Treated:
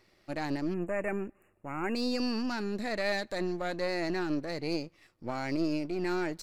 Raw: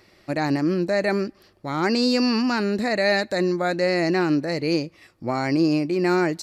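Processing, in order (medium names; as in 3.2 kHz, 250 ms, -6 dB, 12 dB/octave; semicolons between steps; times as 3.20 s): partial rectifier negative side -7 dB; spectral selection erased 0.74–1.96 s, 2.9–6.7 kHz; trim -8 dB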